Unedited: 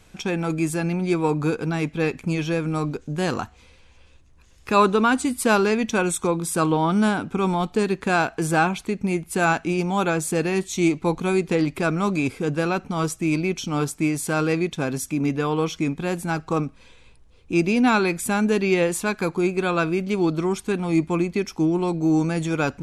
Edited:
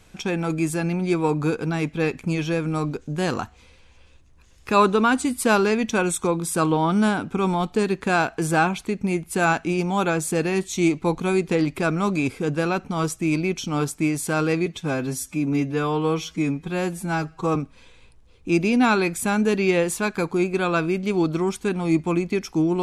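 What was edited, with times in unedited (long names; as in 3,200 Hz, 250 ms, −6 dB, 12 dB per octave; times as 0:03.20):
0:14.66–0:16.59: time-stretch 1.5×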